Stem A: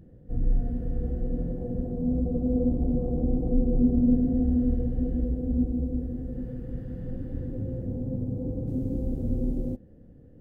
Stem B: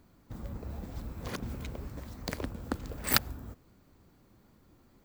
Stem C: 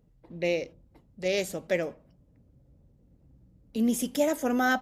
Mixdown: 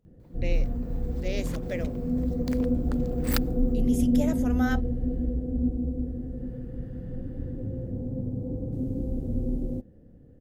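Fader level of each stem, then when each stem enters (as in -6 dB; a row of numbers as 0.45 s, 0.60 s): -1.0 dB, -5.0 dB, -7.0 dB; 0.05 s, 0.20 s, 0.00 s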